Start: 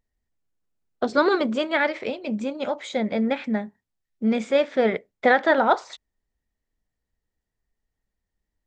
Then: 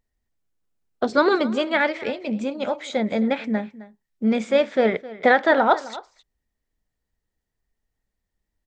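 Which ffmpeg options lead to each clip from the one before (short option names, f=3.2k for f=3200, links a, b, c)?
-af "aecho=1:1:262:0.126,volume=1.5dB"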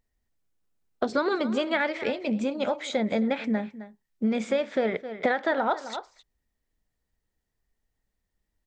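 -af "acompressor=threshold=-22dB:ratio=6"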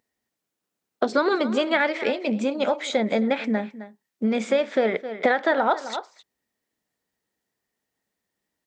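-af "highpass=210,volume=4.5dB"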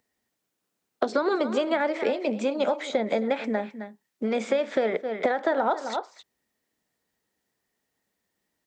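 -filter_complex "[0:a]acrossover=split=330|1200|7100[a][b][c][d];[a]acompressor=threshold=-38dB:ratio=4[e];[b]acompressor=threshold=-25dB:ratio=4[f];[c]acompressor=threshold=-40dB:ratio=4[g];[d]acompressor=threshold=-58dB:ratio=4[h];[e][f][g][h]amix=inputs=4:normalize=0,volume=2.5dB"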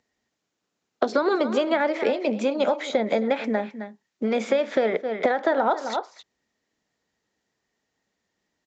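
-af "aresample=16000,aresample=44100,volume=2.5dB"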